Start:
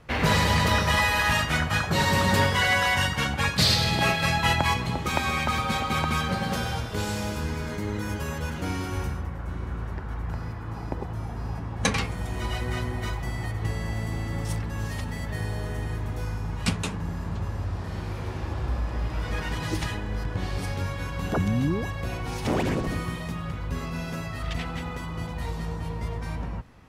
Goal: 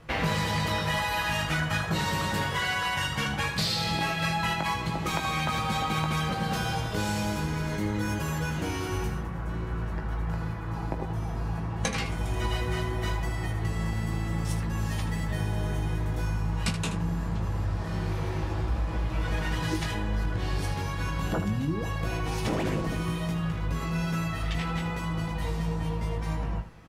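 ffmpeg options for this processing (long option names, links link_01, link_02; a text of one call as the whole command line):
ffmpeg -i in.wav -af "aecho=1:1:6.1:0.32,acompressor=threshold=-26dB:ratio=6,aecho=1:1:19|78:0.473|0.299" out.wav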